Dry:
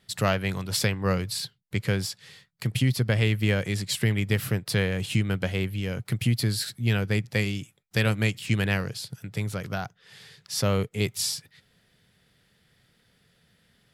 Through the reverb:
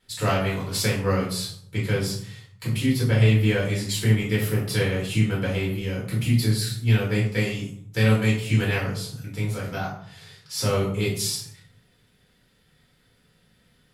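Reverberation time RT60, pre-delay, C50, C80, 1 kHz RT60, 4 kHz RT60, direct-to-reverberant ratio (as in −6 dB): 0.65 s, 3 ms, 4.5 dB, 8.5 dB, 0.65 s, 0.40 s, −6.5 dB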